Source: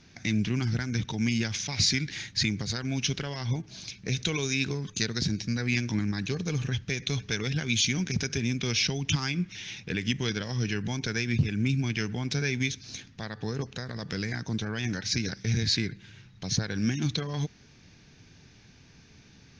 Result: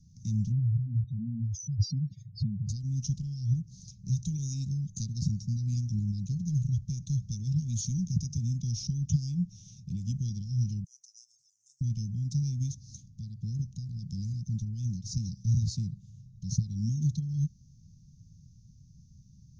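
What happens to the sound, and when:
0.52–2.69 s: spectral contrast enhancement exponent 3.7
10.84–11.81 s: inverse Chebyshev high-pass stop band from 1.5 kHz, stop band 70 dB
whole clip: Chebyshev band-stop 170–6200 Hz, order 3; bass shelf 340 Hz +9.5 dB; trim -5.5 dB

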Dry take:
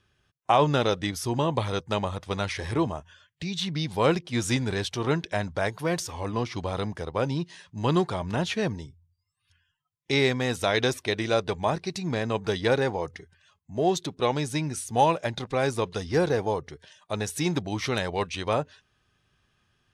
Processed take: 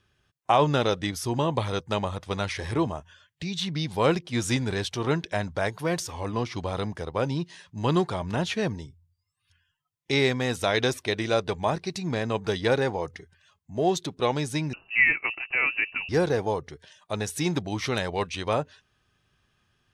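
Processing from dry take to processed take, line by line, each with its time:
14.73–16.09 s: frequency inversion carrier 2.8 kHz

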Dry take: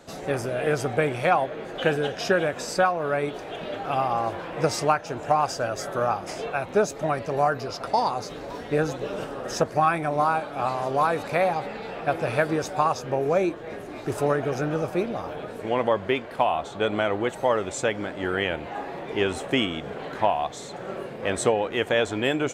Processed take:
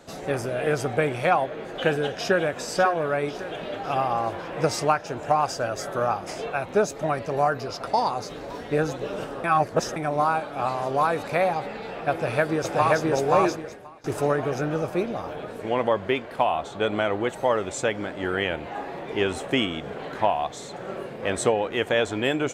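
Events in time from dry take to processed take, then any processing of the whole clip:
2.14–2.57 s: echo throw 550 ms, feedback 60%, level -10.5 dB
9.44–9.96 s: reverse
12.11–13.03 s: echo throw 530 ms, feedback 35%, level 0 dB
13.57–14.04 s: fade out quadratic, to -20 dB

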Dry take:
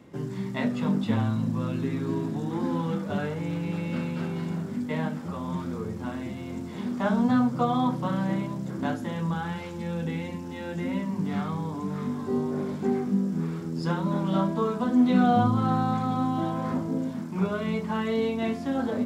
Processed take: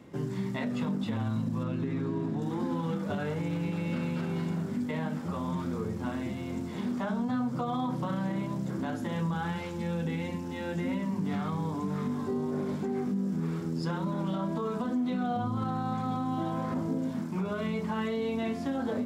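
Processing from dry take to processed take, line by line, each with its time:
1.63–2.42 s: low-pass 2.8 kHz 6 dB/octave
whole clip: compression 2.5:1, threshold -26 dBFS; peak limiter -23.5 dBFS

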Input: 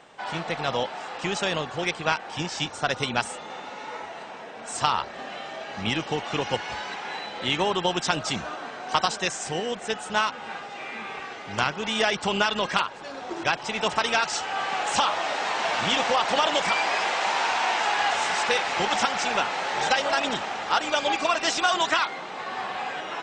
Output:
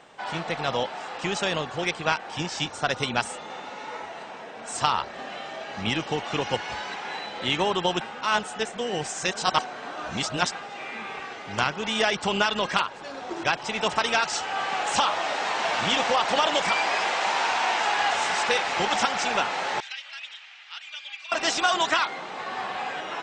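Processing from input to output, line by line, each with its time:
8.01–10.52 s: reverse
19.80–21.32 s: ladder band-pass 3.1 kHz, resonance 35%

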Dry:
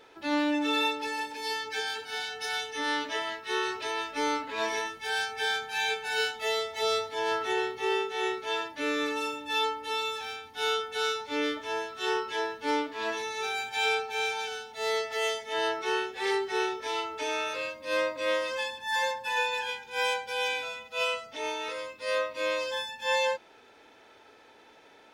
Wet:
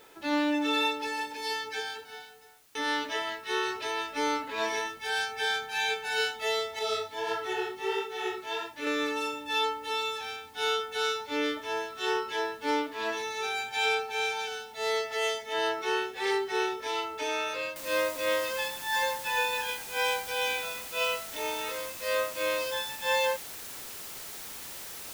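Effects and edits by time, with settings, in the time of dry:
1.54–2.75 s: studio fade out
6.79–8.87 s: chorus 1.5 Hz, delay 16 ms, depth 5.7 ms
17.76 s: noise floor step -62 dB -42 dB

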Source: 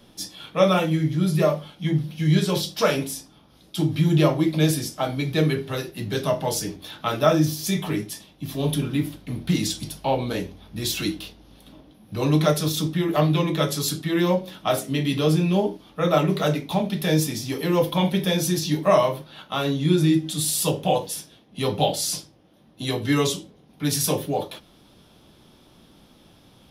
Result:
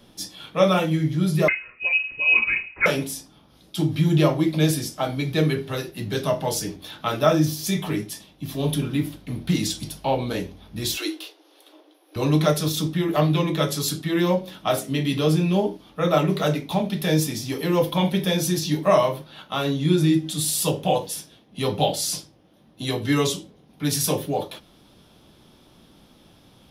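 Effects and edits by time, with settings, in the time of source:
1.48–2.86 s: frequency inversion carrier 2.7 kHz
10.97–12.16 s: brick-wall FIR high-pass 290 Hz

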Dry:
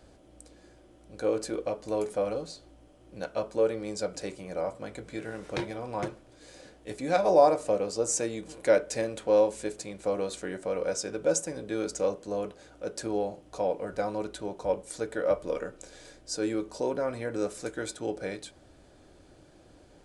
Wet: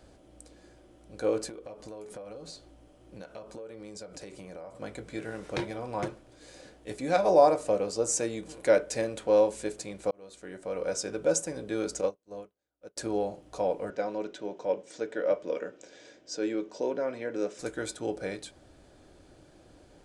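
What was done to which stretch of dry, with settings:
1.49–4.82 s: compression 12:1, threshold -39 dBFS
10.11–11.01 s: fade in
12.01–12.97 s: upward expansion 2.5:1, over -47 dBFS
13.90–17.59 s: cabinet simulation 220–6200 Hz, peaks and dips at 810 Hz -4 dB, 1.2 kHz -6 dB, 4.3 kHz -6 dB

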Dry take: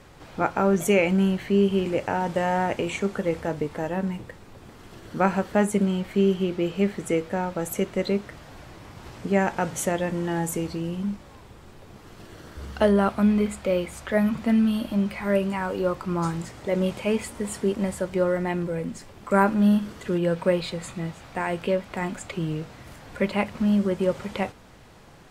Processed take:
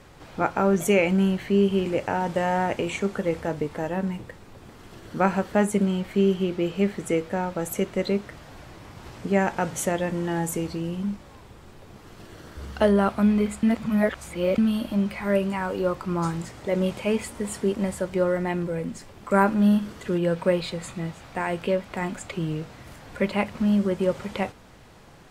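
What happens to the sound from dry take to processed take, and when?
13.63–14.58 s: reverse

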